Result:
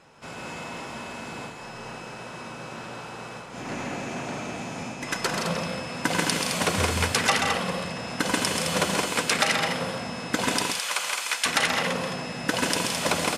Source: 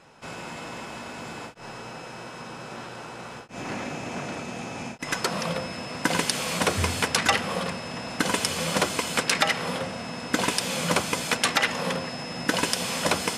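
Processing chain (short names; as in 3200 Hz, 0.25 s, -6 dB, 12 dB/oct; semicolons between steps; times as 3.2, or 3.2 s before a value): 10.58–11.46 HPF 1100 Hz 12 dB/oct; tapped delay 0.132/0.168/0.214 s -5.5/-8.5/-6.5 dB; gain -1.5 dB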